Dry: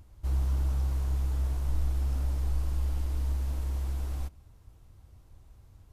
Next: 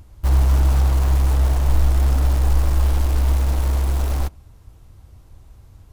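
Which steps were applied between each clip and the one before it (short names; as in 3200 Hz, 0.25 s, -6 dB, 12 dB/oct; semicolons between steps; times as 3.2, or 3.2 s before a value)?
dynamic EQ 790 Hz, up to +5 dB, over -55 dBFS, Q 0.75; in parallel at -7 dB: bit-crush 6-bit; on the sum: gain +9 dB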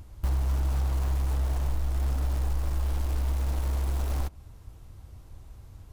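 compressor 4:1, threshold -24 dBFS, peak gain reduction 12 dB; gain -1.5 dB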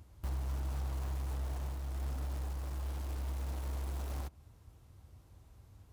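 HPF 61 Hz; gain -8 dB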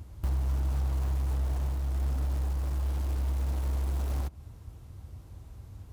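low shelf 340 Hz +5.5 dB; in parallel at +1.5 dB: compressor, threshold -39 dBFS, peak gain reduction 10.5 dB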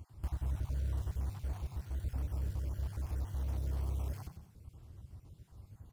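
random spectral dropouts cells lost 36%; on a send: frequency-shifting echo 95 ms, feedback 40%, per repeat +33 Hz, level -9.5 dB; on the sum: gain -6.5 dB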